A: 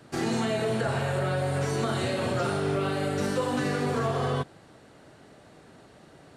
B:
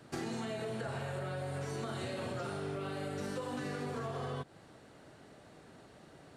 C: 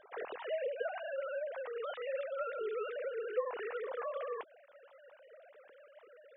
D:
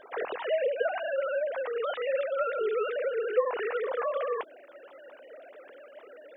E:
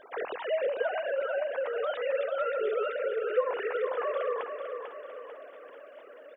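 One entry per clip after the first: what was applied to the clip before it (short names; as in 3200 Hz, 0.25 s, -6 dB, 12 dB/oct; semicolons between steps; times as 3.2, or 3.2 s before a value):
compressor, threshold -32 dBFS, peak gain reduction 9 dB; gain -4 dB
sine-wave speech
band noise 270–720 Hz -70 dBFS; gain +9 dB
feedback echo 0.445 s, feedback 49%, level -7 dB; gain -1.5 dB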